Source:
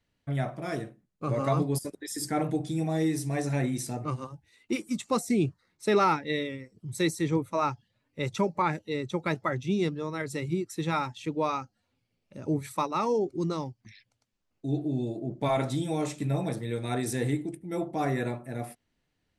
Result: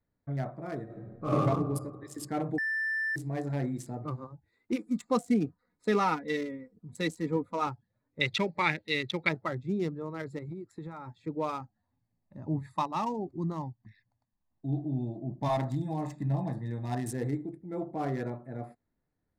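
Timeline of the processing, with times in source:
0.85–1.31 reverb throw, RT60 1.6 s, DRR -11 dB
2.58–3.16 bleep 1770 Hz -23.5 dBFS
4.72–7.67 comb 4.1 ms
8.21–9.29 band shelf 2900 Hz +14 dB
10.38–11.08 compressor 12:1, threshold -32 dBFS
11.6–17.12 comb 1.1 ms
whole clip: Wiener smoothing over 15 samples; gain -3.5 dB

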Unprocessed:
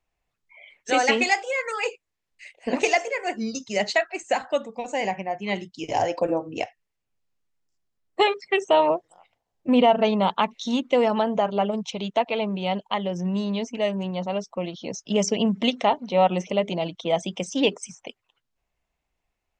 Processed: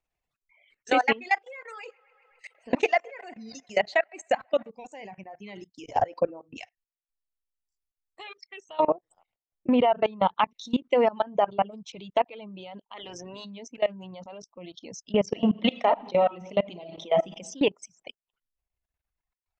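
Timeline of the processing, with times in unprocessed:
1.34–4.7 band-limited delay 0.13 s, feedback 73%, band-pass 1200 Hz, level -14 dB
6.57–8.8 bell 330 Hz -14 dB 2.8 oct
12.96–13.44 spectral limiter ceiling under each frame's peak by 21 dB
15.26–17.29 reverb throw, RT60 0.96 s, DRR 3.5 dB
whole clip: reverb removal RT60 1.8 s; treble ducked by the level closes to 2700 Hz, closed at -19.5 dBFS; level quantiser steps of 22 dB; gain +2.5 dB

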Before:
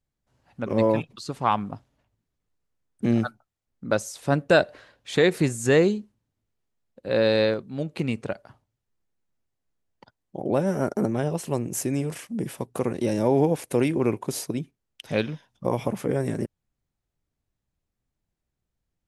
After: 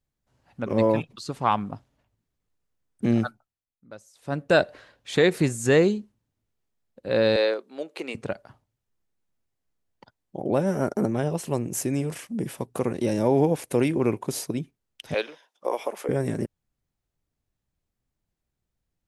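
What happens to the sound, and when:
3.23–4.62 dip -20 dB, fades 0.49 s
7.36–8.15 HPF 350 Hz 24 dB/oct
15.14–16.09 HPF 400 Hz 24 dB/oct

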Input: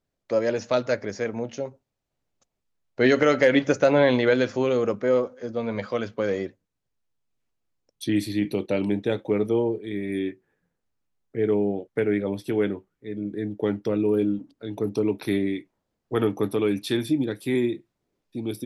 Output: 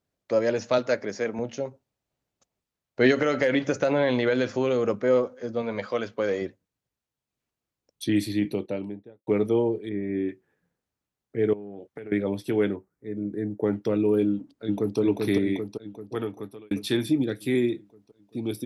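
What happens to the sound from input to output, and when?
0.78–1.39 HPF 160 Hz
3.11–4.89 compressor 3:1, threshold -19 dBFS
5.62–6.42 tone controls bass -6 dB, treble 0 dB
8.25–9.27 studio fade out
9.89–10.29 Gaussian blur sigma 4 samples
11.53–12.12 compressor 16:1, threshold -34 dBFS
12.76–13.73 bell 3200 Hz -14.5 dB 0.86 oct
14.29–14.99 echo throw 0.39 s, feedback 65%, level -2.5 dB
15.57–16.71 fade out
17.22–17.71 bell 940 Hz -11.5 dB 0.26 oct
whole clip: HPF 45 Hz

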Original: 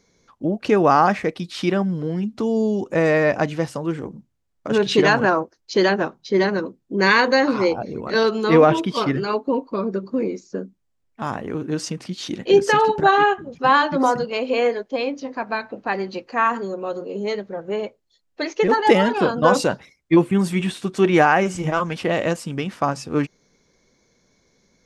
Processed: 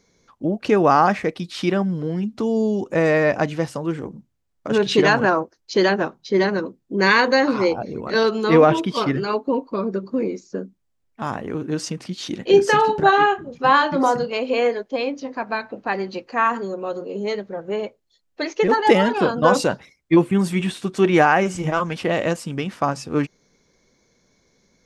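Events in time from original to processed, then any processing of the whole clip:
12.5–14.34 doubler 33 ms -12 dB

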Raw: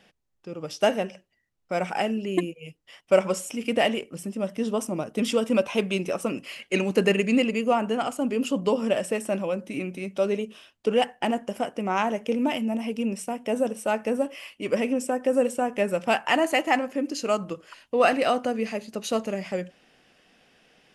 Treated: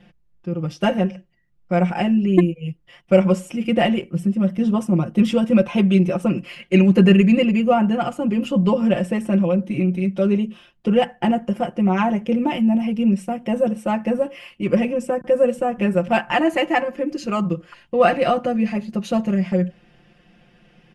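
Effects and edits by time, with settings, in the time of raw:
15.21–17.5 bands offset in time lows, highs 30 ms, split 150 Hz
whole clip: tone controls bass +14 dB, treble -10 dB; comb 5.7 ms, depth 98%

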